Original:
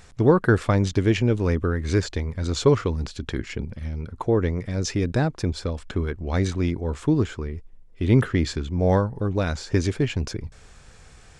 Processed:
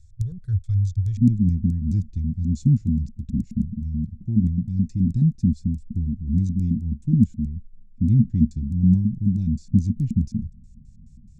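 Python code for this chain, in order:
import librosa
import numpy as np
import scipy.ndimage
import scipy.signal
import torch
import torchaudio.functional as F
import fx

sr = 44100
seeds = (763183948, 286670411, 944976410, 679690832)

y = fx.filter_lfo_lowpass(x, sr, shape='square', hz=4.7, low_hz=230.0, high_hz=3200.0, q=7.7)
y = fx.ellip_bandstop(y, sr, low_hz=fx.steps((0.0, 100.0), (1.17, 200.0)), high_hz=7100.0, order=3, stop_db=40)
y = F.gain(torch.from_numpy(y), 2.5).numpy()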